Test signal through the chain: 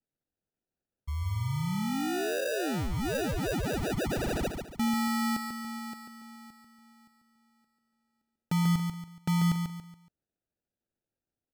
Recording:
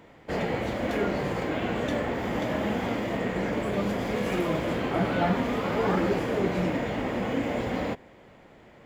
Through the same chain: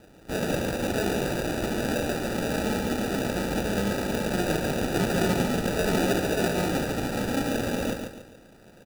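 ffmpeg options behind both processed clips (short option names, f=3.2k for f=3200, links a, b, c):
-af "acrusher=samples=41:mix=1:aa=0.000001,aecho=1:1:141|282|423|564:0.501|0.175|0.0614|0.0215"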